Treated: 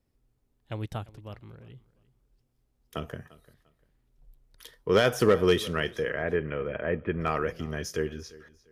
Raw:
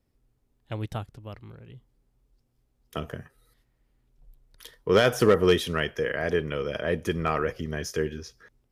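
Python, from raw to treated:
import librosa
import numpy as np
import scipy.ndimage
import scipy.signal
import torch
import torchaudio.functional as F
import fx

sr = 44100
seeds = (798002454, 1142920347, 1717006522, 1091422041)

p1 = fx.steep_lowpass(x, sr, hz=2600.0, slope=36, at=(6.1, 7.21))
p2 = p1 + fx.echo_feedback(p1, sr, ms=347, feedback_pct=25, wet_db=-20.5, dry=0)
y = p2 * 10.0 ** (-2.0 / 20.0)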